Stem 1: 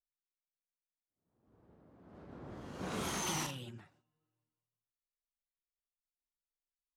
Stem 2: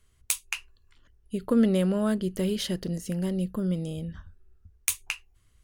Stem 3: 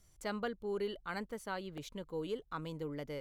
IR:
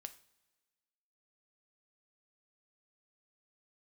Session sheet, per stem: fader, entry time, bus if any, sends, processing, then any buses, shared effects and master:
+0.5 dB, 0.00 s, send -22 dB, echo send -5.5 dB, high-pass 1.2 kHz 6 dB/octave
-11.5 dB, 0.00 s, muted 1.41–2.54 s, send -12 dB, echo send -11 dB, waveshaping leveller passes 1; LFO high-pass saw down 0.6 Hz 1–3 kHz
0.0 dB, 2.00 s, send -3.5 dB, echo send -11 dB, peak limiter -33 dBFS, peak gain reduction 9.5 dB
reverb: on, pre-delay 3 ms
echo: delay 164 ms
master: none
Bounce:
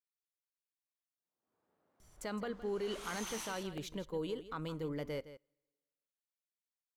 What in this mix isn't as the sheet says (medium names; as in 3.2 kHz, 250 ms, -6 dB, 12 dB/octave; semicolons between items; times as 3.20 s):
stem 1 +0.5 dB -> -6.5 dB; stem 2: muted